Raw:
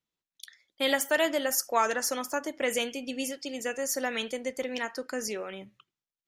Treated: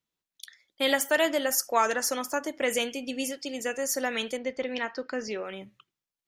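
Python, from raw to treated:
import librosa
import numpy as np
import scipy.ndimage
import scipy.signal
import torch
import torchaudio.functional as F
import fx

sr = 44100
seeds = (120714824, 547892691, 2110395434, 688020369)

y = fx.lowpass(x, sr, hz=4900.0, slope=24, at=(4.37, 5.45))
y = y * librosa.db_to_amplitude(1.5)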